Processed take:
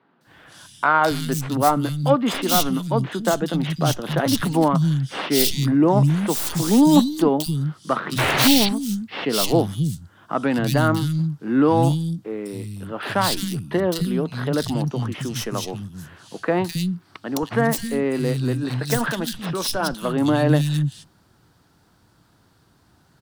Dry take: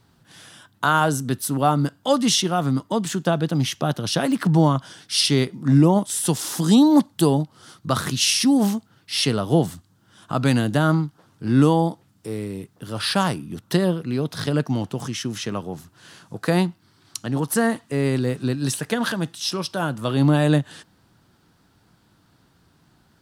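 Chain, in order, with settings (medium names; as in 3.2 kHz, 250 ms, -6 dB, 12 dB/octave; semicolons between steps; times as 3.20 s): tracing distortion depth 0.17 ms; painted sound noise, 8.18–8.48 s, 220–4700 Hz -20 dBFS; three bands offset in time mids, highs, lows 210/270 ms, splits 200/2700 Hz; trim +2 dB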